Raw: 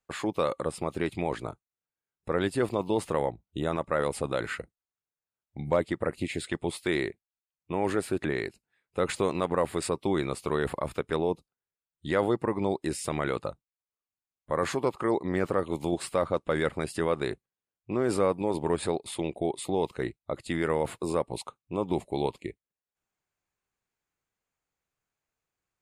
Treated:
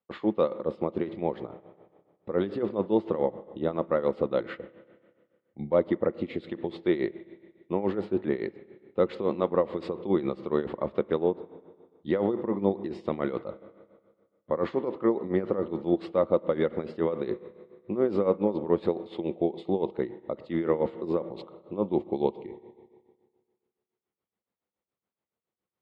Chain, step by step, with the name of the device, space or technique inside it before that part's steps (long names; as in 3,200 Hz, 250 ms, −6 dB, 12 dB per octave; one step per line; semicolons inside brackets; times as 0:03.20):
combo amplifier with spring reverb and tremolo (spring reverb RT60 1.8 s, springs 30/57 ms, chirp 65 ms, DRR 14 dB; amplitude tremolo 7.1 Hz, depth 76%; loudspeaker in its box 87–3,500 Hz, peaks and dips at 130 Hz −4 dB, 210 Hz +9 dB, 350 Hz +6 dB, 510 Hz +6 dB, 1,600 Hz −7 dB, 2,500 Hz −7 dB)